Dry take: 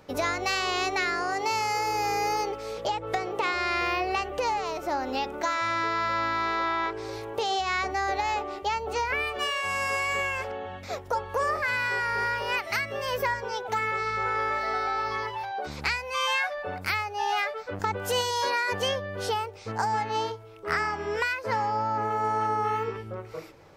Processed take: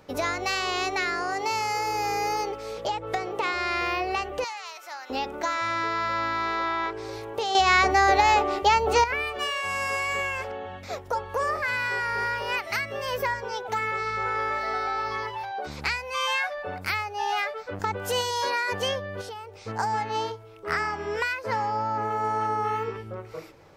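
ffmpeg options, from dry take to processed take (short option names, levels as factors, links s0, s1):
-filter_complex "[0:a]asettb=1/sr,asplit=3[s0][s1][s2];[s0]atrim=end=4.444[s3];[s1]atrim=start=4.44:end=5.1,asetpts=PTS-STARTPTS,afade=t=in:d=0.004:c=qsin,afade=t=out:st=0.656:d=0.004:c=qsin,highpass=1500[s4];[s2]atrim=start=5.096[s5];[s3][s4]acrossfade=d=0.004:c1=hsin:c2=qsin[s6];[s6][s5]acrossfade=d=0.004:c1=qsin:c2=hsin,asettb=1/sr,asplit=3[s7][s8][s9];[s7]atrim=end=19.214[s10];[s8]atrim=start=19.21:end=19.61,asetpts=PTS-STARTPTS,afade=t=in:d=0.004:c=qsin,afade=t=out:st=0.396:d=0.004:c=qsin,acompressor=threshold=0.0126:ratio=3:attack=3.2:release=140:knee=1:detection=peak[s11];[s9]atrim=start=19.606[s12];[s10][s11]acrossfade=d=0.004:c1=hsin:c2=qsin[s13];[s13][s12]acrossfade=d=0.004:c1=qsin:c2=hsin,asplit=3[s14][s15][s16];[s14]atrim=end=7.552[s17];[s15]atrim=start=7.548:end=9.042,asetpts=PTS-STARTPTS,volume=2.66[s18];[s16]atrim=start=9.038[s19];[s17][s18]acrossfade=d=0.004:c1=hsin:c2=hsin[s20];[s20][s19]acrossfade=d=0.004:c1=hsin:c2=hsin"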